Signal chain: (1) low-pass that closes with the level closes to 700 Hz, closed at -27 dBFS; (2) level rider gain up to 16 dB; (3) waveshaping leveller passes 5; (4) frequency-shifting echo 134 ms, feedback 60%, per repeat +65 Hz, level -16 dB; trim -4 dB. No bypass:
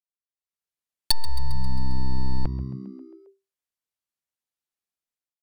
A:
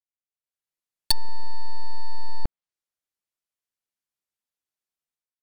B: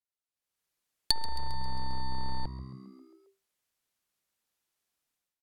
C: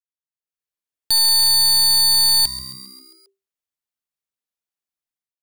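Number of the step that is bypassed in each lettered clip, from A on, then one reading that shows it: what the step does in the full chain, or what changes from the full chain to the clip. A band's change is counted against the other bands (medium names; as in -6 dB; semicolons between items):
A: 4, echo-to-direct -14.0 dB to none; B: 3, crest factor change +9.5 dB; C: 1, 125 Hz band -28.5 dB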